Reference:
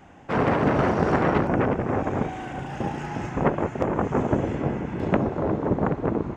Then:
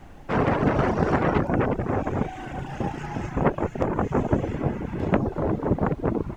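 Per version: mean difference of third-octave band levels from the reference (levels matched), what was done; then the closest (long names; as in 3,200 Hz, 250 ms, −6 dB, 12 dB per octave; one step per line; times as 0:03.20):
1.5 dB: reverb reduction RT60 0.55 s
low-shelf EQ 73 Hz +8 dB
background noise brown −45 dBFS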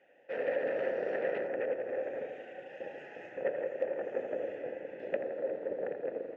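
9.0 dB: formant filter e
low-shelf EQ 230 Hz −11.5 dB
bucket-brigade delay 83 ms, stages 1,024, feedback 71%, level −8 dB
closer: first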